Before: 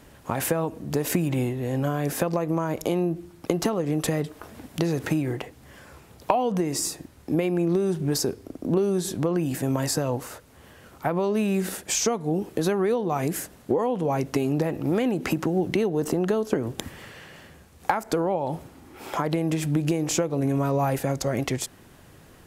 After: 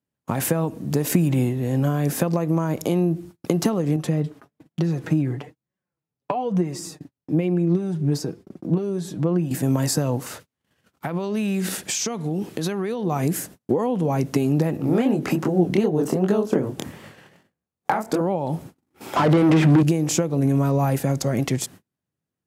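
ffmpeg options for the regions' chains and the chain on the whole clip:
-filter_complex "[0:a]asettb=1/sr,asplit=3[s0][s1][s2];[s0]atrim=end=3.964[s3];[s1]atrim=start=3.96:end=9.51,asetpts=PTS-STARTPTS,afade=t=in:d=0.004:c=qsin,afade=t=out:st=5.546:d=0.004:c=qsin,lowpass=f=3500:p=1,flanger=delay=5.2:depth=2.2:regen=28:speed=1.1:shape=triangular[s4];[s2]atrim=start=9.506[s5];[s3][s4]acrossfade=d=0.004:c1=hsin:c2=qsin[s6];[s6][s5]acrossfade=d=0.004:c1=qsin:c2=hsin,asettb=1/sr,asplit=3[s7][s8][s9];[s7]atrim=end=10.264[s10];[s8]atrim=start=10.26:end=13.04,asetpts=PTS-STARTPTS,afade=t=in:d=0.004:c=qsin,afade=t=out:st=2.776:d=0.004:c=qsin,equalizer=f=3100:t=o:w=2.5:g=6.5,acompressor=threshold=0.0562:ratio=4:attack=3.2:release=140:knee=1:detection=peak[s11];[s9]atrim=start=13.036[s12];[s10][s11]acrossfade=d=0.004:c1=hsin:c2=qsin[s13];[s13][s12]acrossfade=d=0.004:c1=qsin:c2=hsin,asettb=1/sr,asplit=3[s14][s15][s16];[s14]atrim=end=14.774[s17];[s15]atrim=start=14.77:end=18.21,asetpts=PTS-STARTPTS,afade=t=in:d=0.004:c=qsin,afade=t=out:st=3.436:d=0.004:c=qsin,equalizer=f=690:t=o:w=2.9:g=5.5,flanger=delay=19.5:depth=8:speed=2.6[s18];[s16]atrim=start=18.206[s19];[s17][s18]acrossfade=d=0.004:c1=hsin:c2=qsin[s20];[s20][s19]acrossfade=d=0.004:c1=qsin:c2=hsin,asettb=1/sr,asplit=3[s21][s22][s23];[s21]atrim=end=19.164[s24];[s22]atrim=start=19.16:end=19.83,asetpts=PTS-STARTPTS,afade=t=in:d=0.004:c=qsin,afade=t=out:st=0.666:d=0.004:c=qsin,acrossover=split=3200[s25][s26];[s26]acompressor=threshold=0.00282:ratio=4:attack=1:release=60[s27];[s25][s27]amix=inputs=2:normalize=0,asplit=2[s28][s29];[s29]highpass=f=720:p=1,volume=28.2,asoftclip=type=tanh:threshold=0.282[s30];[s28][s30]amix=inputs=2:normalize=0,lowpass=f=1600:p=1,volume=0.501[s31];[s23]atrim=start=19.826[s32];[s24][s31]acrossfade=d=0.004:c1=hsin:c2=qsin[s33];[s33][s32]acrossfade=d=0.004:c1=qsin:c2=hsin,agate=range=0.0126:threshold=0.00708:ratio=16:detection=peak,highpass=150,bass=f=250:g=11,treble=f=4000:g=3"

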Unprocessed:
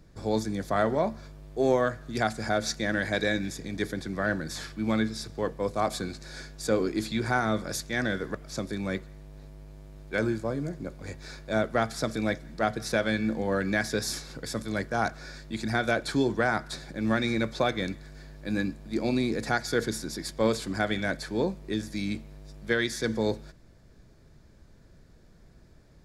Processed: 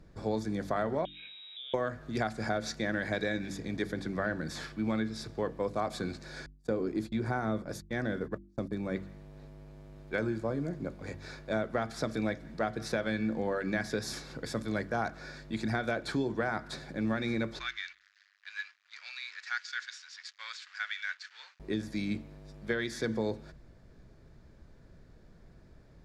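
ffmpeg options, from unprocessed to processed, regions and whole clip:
-filter_complex "[0:a]asettb=1/sr,asplit=3[s0][s1][s2];[s0]atrim=end=1.054[s3];[s1]atrim=start=1.05:end=1.74,asetpts=PTS-STARTPTS,afade=t=in:d=0.004:c=qsin,afade=t=out:st=0.686:d=0.004:c=qsin,equalizer=f=1500:t=o:w=0.39:g=14.5,acompressor=threshold=0.01:ratio=5:attack=3.2:release=140:knee=1:detection=peak,lowpass=f=3300:t=q:w=0.5098,lowpass=f=3300:t=q:w=0.6013,lowpass=f=3300:t=q:w=0.9,lowpass=f=3300:t=q:w=2.563,afreqshift=-3900[s4];[s2]atrim=start=1.736[s5];[s3][s4]acrossfade=d=0.004:c1=hsin:c2=qsin[s6];[s6][s5]acrossfade=d=0.004:c1=qsin:c2=hsin,asettb=1/sr,asplit=3[s7][s8][s9];[s7]atrim=end=6.464[s10];[s8]atrim=start=6.46:end=8.96,asetpts=PTS-STARTPTS,afade=t=in:d=0.004:c=qsin,afade=t=out:st=2.496:d=0.004:c=qsin,equalizer=f=3300:w=0.31:g=-7,agate=range=0.0158:threshold=0.0126:ratio=16:release=100:detection=peak[s11];[s9]atrim=start=8.956[s12];[s10][s11]acrossfade=d=0.004:c1=hsin:c2=qsin[s13];[s13][s12]acrossfade=d=0.004:c1=qsin:c2=hsin,asettb=1/sr,asplit=3[s14][s15][s16];[s14]atrim=end=17.594[s17];[s15]atrim=start=17.59:end=21.6,asetpts=PTS-STARTPTS,afade=t=in:d=0.004:c=qsin,afade=t=out:st=4.006:d=0.004:c=qsin,aeval=exprs='sgn(val(0))*max(abs(val(0))-0.00631,0)':c=same,asuperpass=centerf=3200:order=8:qfactor=0.59[s18];[s16]atrim=start=21.596[s19];[s17][s18]acrossfade=d=0.004:c1=hsin:c2=qsin[s20];[s20][s19]acrossfade=d=0.004:c1=qsin:c2=hsin,acompressor=threshold=0.0447:ratio=6,highshelf=f=5100:g=-11,bandreject=f=48.86:t=h:w=4,bandreject=f=97.72:t=h:w=4,bandreject=f=146.58:t=h:w=4,bandreject=f=195.44:t=h:w=4,bandreject=f=244.3:t=h:w=4,bandreject=f=293.16:t=h:w=4,bandreject=f=342.02:t=h:w=4"

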